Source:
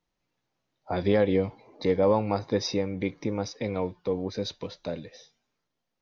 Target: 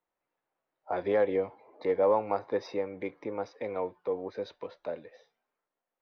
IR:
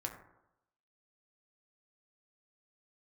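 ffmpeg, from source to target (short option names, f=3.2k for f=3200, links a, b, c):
-filter_complex "[0:a]acrossover=split=370 2200:gain=0.126 1 0.2[a][b][c];[a][b][c]amix=inputs=3:normalize=0,adynamicsmooth=sensitivity=2.5:basefreq=5.1k"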